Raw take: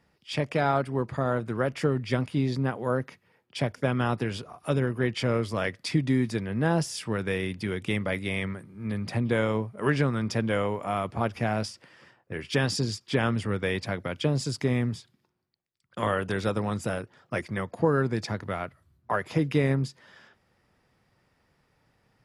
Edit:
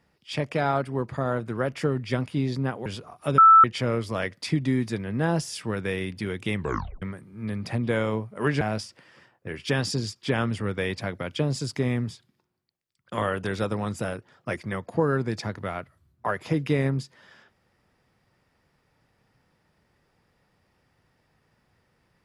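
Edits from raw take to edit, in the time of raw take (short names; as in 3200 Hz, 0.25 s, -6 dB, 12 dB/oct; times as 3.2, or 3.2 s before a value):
2.86–4.28 cut
4.8–5.06 bleep 1320 Hz -9.5 dBFS
7.98 tape stop 0.46 s
10.03–11.46 cut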